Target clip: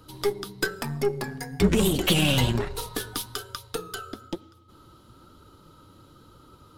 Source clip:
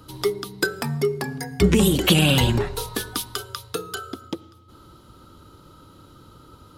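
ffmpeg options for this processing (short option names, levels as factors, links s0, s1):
-af "flanger=delay=1.7:depth=9.1:regen=64:speed=1.1:shape=triangular,acontrast=34,aeval=exprs='0.596*(cos(1*acos(clip(val(0)/0.596,-1,1)))-cos(1*PI/2))+0.0376*(cos(8*acos(clip(val(0)/0.596,-1,1)))-cos(8*PI/2))':c=same,volume=0.562"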